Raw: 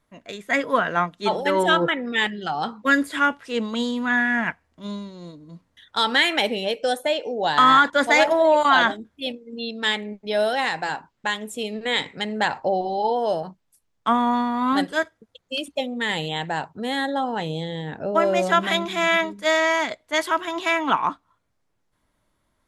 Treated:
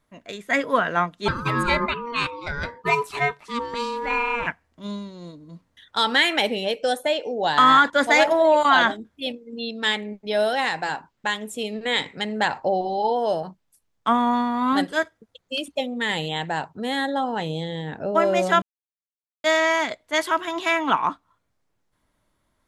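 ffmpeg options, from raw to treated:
-filter_complex "[0:a]asettb=1/sr,asplit=3[a][b][c];[a]atrim=end=1.284[d];[b]atrim=start=1.28:end=4.47,asetpts=PTS-STARTPTS,afade=t=in:d=0.004:c=qsin,afade=t=out:st=3.186:d=0.004:c=qsin,aeval=exprs='val(0)*sin(2*PI*710*n/s)':c=same[e];[c]atrim=start=4.466[f];[d][e]acrossfade=d=0.004:c1=hsin:c2=qsin[g];[g][f]acrossfade=d=0.004:c1=qsin:c2=hsin,asplit=3[h][i][j];[h]atrim=end=18.62,asetpts=PTS-STARTPTS,afade=t=out:st=18.616:d=0.004:c=hsin[k];[i]atrim=start=18.62:end=19.44,asetpts=PTS-STARTPTS,volume=0[l];[j]atrim=start=19.44,asetpts=PTS-STARTPTS,afade=t=in:d=0.004:c=hsin[m];[k][l][m]concat=n=3:v=0:a=1"

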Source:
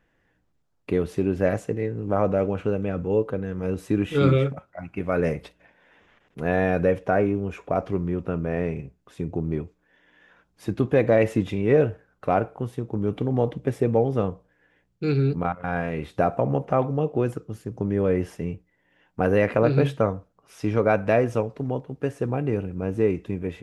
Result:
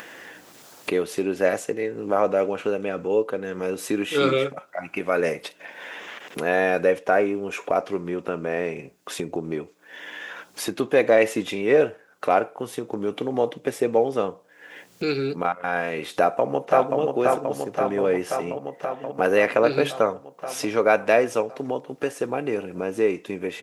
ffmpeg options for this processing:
-filter_complex "[0:a]asplit=2[a][b];[b]afade=t=in:st=16.14:d=0.01,afade=t=out:st=16.99:d=0.01,aecho=0:1:530|1060|1590|2120|2650|3180|3710|4240|4770|5300|5830|6360:0.707946|0.495562|0.346893|0.242825|0.169978|0.118984|0.0832891|0.0583024|0.0408117|0.0285682|0.0199977|0.0139984[c];[a][c]amix=inputs=2:normalize=0,highpass=340,highshelf=f=2.8k:g=9,acompressor=mode=upward:threshold=-25dB:ratio=2.5,volume=2.5dB"

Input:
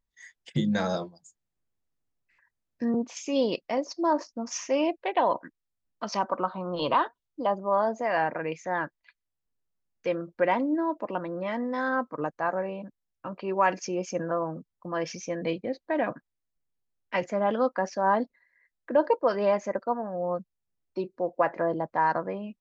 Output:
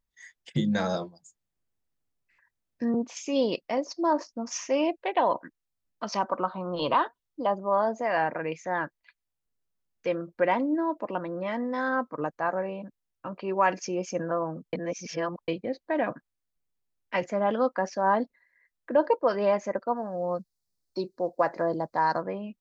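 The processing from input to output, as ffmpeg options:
-filter_complex "[0:a]asettb=1/sr,asplit=3[a][b][c];[a]atrim=end=19.964[d];[b]atrim=start=19.96:end=22.22,asetpts=PTS-STARTPTS,afade=t=in:d=0.004:c=qsin,afade=t=out:st=2.256:d=0.004:c=qsin,highshelf=f=3.6k:t=q:w=3:g=6.5[e];[c]atrim=start=22.216[f];[d][e]acrossfade=d=0.004:c1=hsin:c2=qsin[g];[g][f]acrossfade=d=0.004:c1=qsin:c2=hsin,asplit=3[h][i][j];[h]atrim=end=14.732[k];[i]atrim=start=14.728:end=15.482,asetpts=PTS-STARTPTS,areverse[l];[j]atrim=start=15.478[m];[k][l]acrossfade=d=0.004:c1=hsin:c2=hsin[n];[n][m]acrossfade=d=0.004:c1=hsin:c2=hsin"

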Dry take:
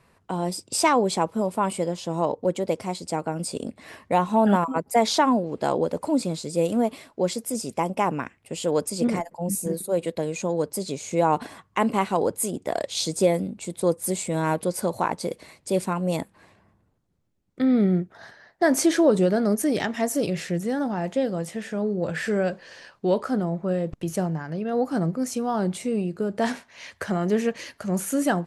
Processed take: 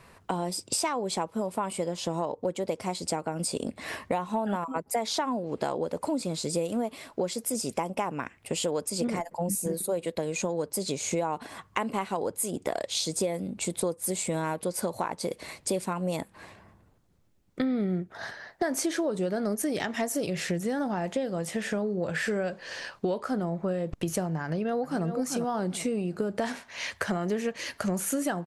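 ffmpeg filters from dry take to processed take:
-filter_complex "[0:a]asplit=2[a][b];[b]afade=t=in:st=24.44:d=0.01,afade=t=out:st=25.05:d=0.01,aecho=0:1:390|780|1170:0.375837|0.0939594|0.0234898[c];[a][c]amix=inputs=2:normalize=0,lowshelf=f=280:g=-7.5,acompressor=threshold=-35dB:ratio=6,lowshelf=f=110:g=8,volume=7.5dB"

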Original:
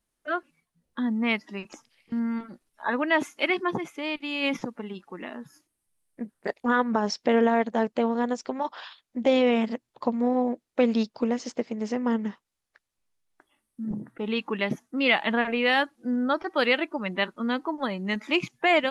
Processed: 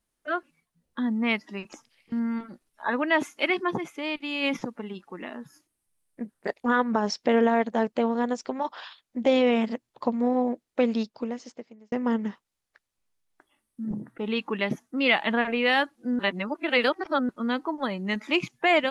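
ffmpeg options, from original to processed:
-filter_complex "[0:a]asplit=4[a][b][c][d];[a]atrim=end=11.92,asetpts=PTS-STARTPTS,afade=t=out:st=10.65:d=1.27[e];[b]atrim=start=11.92:end=16.192,asetpts=PTS-STARTPTS,afade=t=in:d=0.004:c=hsin[f];[c]atrim=start=16.188:end=17.292,asetpts=PTS-STARTPTS,areverse[g];[d]atrim=start=17.288[h];[e][f]concat=n=2:v=0:a=1[i];[i][g]acrossfade=d=0.004:c1=hsin:c2=hsin[j];[j][h]acrossfade=d=0.004:c1=hsin:c2=hsin"

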